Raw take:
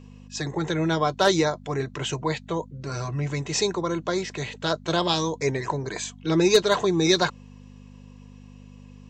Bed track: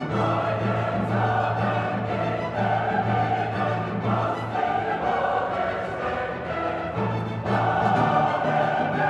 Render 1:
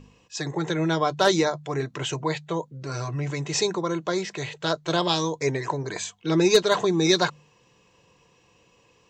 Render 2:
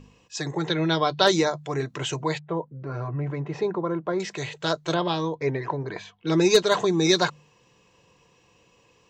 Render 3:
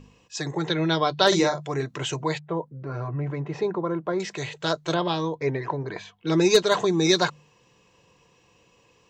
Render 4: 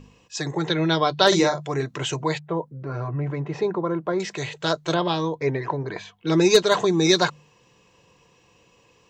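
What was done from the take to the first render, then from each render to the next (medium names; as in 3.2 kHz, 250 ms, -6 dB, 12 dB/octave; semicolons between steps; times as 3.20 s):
de-hum 50 Hz, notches 5
0.67–1.27 s: resonant high shelf 6.1 kHz -13 dB, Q 3; 2.39–4.20 s: low-pass 1.4 kHz; 4.94–6.27 s: distance through air 280 m
1.28–1.70 s: doubling 41 ms -5.5 dB
trim +2 dB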